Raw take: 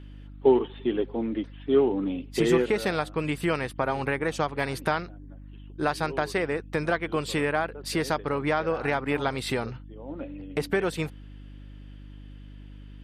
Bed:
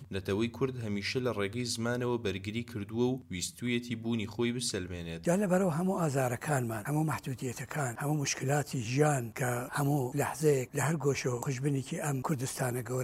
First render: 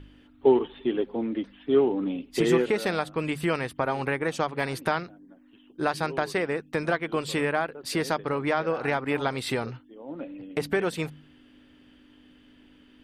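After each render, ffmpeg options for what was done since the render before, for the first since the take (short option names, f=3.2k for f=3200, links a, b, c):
-af "bandreject=f=50:t=h:w=4,bandreject=f=100:t=h:w=4,bandreject=f=150:t=h:w=4,bandreject=f=200:t=h:w=4"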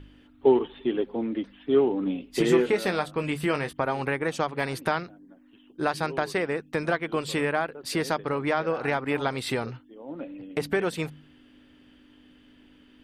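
-filter_complex "[0:a]asettb=1/sr,asplit=3[a][b][c];[a]atrim=end=2.044[d];[b]atrim=start=2.04:end=3.73,asetpts=PTS-STARTPTS,afade=t=in:d=0.004:c=qsin,afade=t=out:st=1.686:d=0.004:c=qsin,asplit=2[e][f];[f]adelay=21,volume=-9dB[g];[e][g]amix=inputs=2:normalize=0,atrim=end_sample=74529[h];[c]atrim=start=3.726[i];[d][h]acrossfade=d=0.004:c1=hsin:c2=qsin[j];[j][i]acrossfade=d=0.004:c1=qsin:c2=hsin"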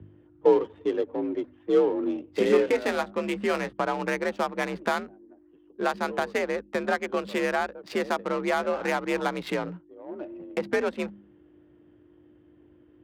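-af "adynamicsmooth=sensitivity=4.5:basefreq=960,afreqshift=52"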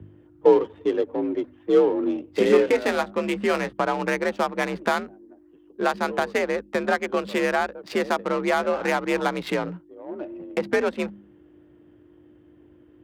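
-af "volume=3.5dB"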